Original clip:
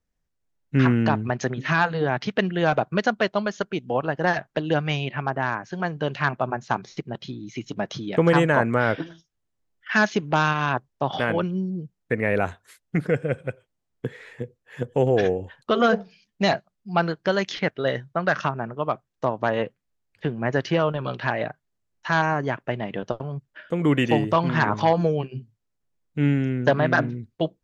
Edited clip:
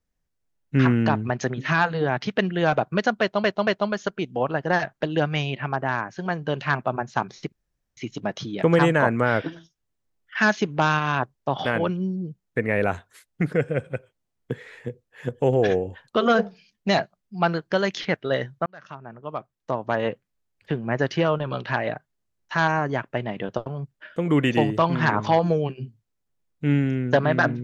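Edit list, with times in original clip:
0:03.21: stutter 0.23 s, 3 plays
0:07.06–0:07.51: fill with room tone
0:18.20–0:19.64: fade in

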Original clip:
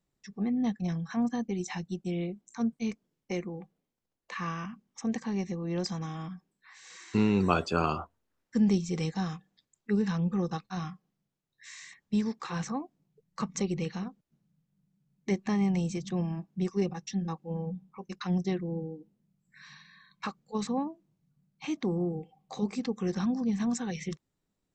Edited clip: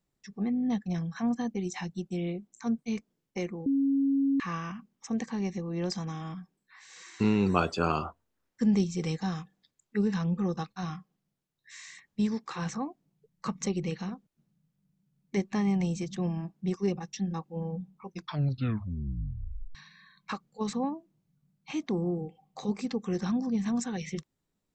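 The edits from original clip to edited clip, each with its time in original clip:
0:00.55: stutter 0.02 s, 4 plays
0:03.60–0:04.34: beep over 275 Hz −22.5 dBFS
0:18.02: tape stop 1.67 s

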